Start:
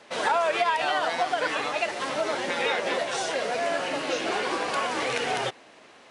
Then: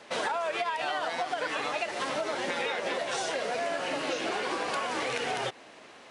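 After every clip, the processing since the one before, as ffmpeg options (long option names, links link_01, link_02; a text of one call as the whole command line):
ffmpeg -i in.wav -af "acompressor=threshold=-29dB:ratio=6,volume=1dB" out.wav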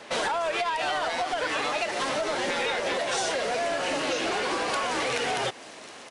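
ffmpeg -i in.wav -filter_complex "[0:a]acrossover=split=3800[link_01][link_02];[link_01]asoftclip=type=tanh:threshold=-28.5dB[link_03];[link_02]aecho=1:1:713:0.251[link_04];[link_03][link_04]amix=inputs=2:normalize=0,volume=6dB" out.wav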